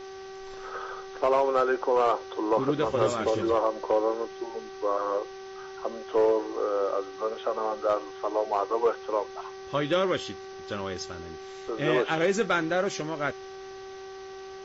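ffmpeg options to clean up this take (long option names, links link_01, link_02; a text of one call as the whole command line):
ffmpeg -i in.wav -af "bandreject=frequency=384.4:width_type=h:width=4,bandreject=frequency=768.8:width_type=h:width=4,bandreject=frequency=1153.2:width_type=h:width=4,bandreject=frequency=1537.6:width_type=h:width=4,bandreject=frequency=1922:width_type=h:width=4,afwtdn=0.004" out.wav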